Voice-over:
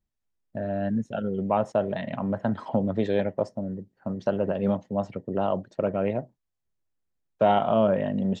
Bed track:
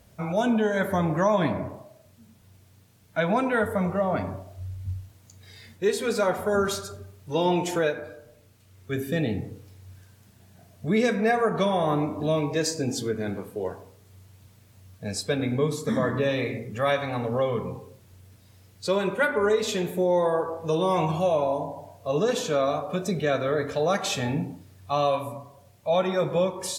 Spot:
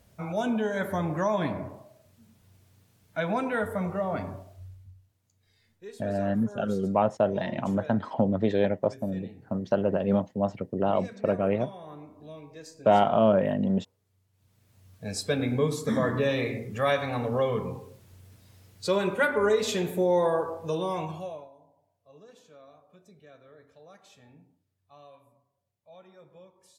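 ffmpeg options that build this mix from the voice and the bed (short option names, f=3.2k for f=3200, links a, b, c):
-filter_complex "[0:a]adelay=5450,volume=0.5dB[a];[1:a]volume=14.5dB,afade=t=out:st=4.41:d=0.5:silence=0.16788,afade=t=in:st=14.32:d=0.98:silence=0.112202,afade=t=out:st=20.28:d=1.22:silence=0.0421697[b];[a][b]amix=inputs=2:normalize=0"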